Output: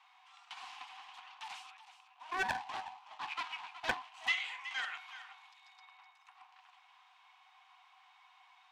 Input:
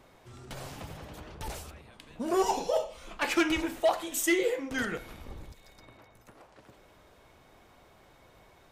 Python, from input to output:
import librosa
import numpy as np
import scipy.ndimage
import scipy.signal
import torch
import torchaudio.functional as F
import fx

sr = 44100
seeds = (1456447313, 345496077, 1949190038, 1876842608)

y = fx.median_filter(x, sr, points=25, at=(1.77, 4.27))
y = scipy.signal.sosfilt(scipy.signal.cheby1(6, 9, 730.0, 'highpass', fs=sr, output='sos'), y)
y = fx.air_absorb(y, sr, metres=88.0)
y = y + 10.0 ** (-13.0 / 20.0) * np.pad(y, (int(371 * sr / 1000.0), 0))[:len(y)]
y = fx.doppler_dist(y, sr, depth_ms=0.52)
y = y * librosa.db_to_amplitude(3.5)